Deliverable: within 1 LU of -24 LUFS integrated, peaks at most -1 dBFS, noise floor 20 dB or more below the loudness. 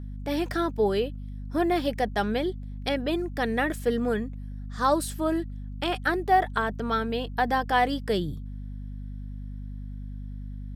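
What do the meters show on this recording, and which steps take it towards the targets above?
hum 50 Hz; highest harmonic 250 Hz; hum level -34 dBFS; loudness -27.0 LUFS; peak level -10.5 dBFS; loudness target -24.0 LUFS
-> de-hum 50 Hz, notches 5; trim +3 dB

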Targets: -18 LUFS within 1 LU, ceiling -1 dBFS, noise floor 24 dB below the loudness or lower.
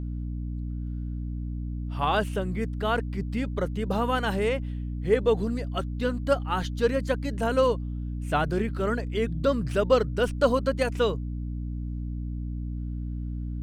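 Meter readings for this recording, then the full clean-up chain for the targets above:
hum 60 Hz; highest harmonic 300 Hz; hum level -29 dBFS; loudness -28.0 LUFS; peak level -8.0 dBFS; loudness target -18.0 LUFS
-> de-hum 60 Hz, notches 5; trim +10 dB; peak limiter -1 dBFS

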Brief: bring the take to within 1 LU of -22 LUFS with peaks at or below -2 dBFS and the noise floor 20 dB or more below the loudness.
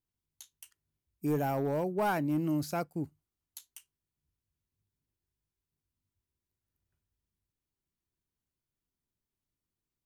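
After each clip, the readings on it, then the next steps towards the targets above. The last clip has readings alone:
clipped samples 0.3%; clipping level -24.0 dBFS; loudness -32.5 LUFS; peak level -24.0 dBFS; loudness target -22.0 LUFS
-> clip repair -24 dBFS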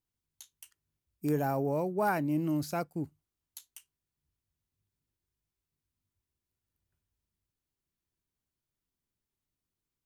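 clipped samples 0.0%; loudness -32.0 LUFS; peak level -15.0 dBFS; loudness target -22.0 LUFS
-> trim +10 dB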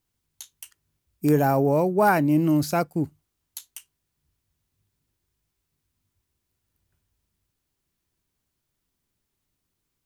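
loudness -22.0 LUFS; peak level -5.0 dBFS; noise floor -80 dBFS

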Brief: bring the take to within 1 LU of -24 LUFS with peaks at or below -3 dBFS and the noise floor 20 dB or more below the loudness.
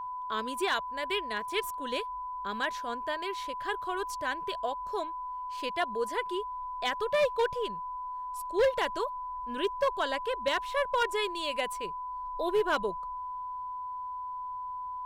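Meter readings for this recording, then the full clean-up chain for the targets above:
clipped samples 0.4%; clipping level -20.5 dBFS; steady tone 1 kHz; tone level -35 dBFS; loudness -32.5 LUFS; peak level -20.5 dBFS; loudness target -24.0 LUFS
-> clip repair -20.5 dBFS; band-stop 1 kHz, Q 30; trim +8.5 dB

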